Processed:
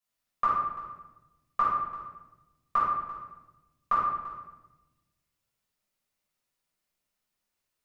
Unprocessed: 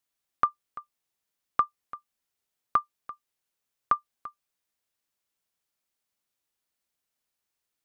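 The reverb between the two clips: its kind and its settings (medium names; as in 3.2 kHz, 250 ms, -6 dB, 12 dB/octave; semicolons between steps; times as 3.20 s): simulated room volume 490 m³, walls mixed, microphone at 5.9 m; trim -10.5 dB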